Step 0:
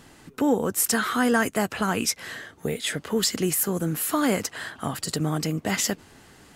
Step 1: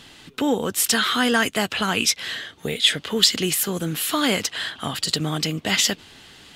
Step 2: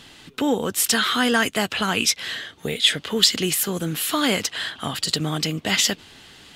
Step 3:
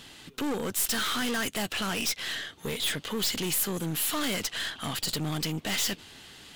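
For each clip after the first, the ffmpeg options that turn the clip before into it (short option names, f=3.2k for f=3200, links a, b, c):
-af "equalizer=f=3.4k:t=o:w=1.2:g=14.5"
-af anull
-af "aeval=exprs='(tanh(20*val(0)+0.45)-tanh(0.45))/20':c=same,crystalizer=i=0.5:c=0,volume=-1.5dB"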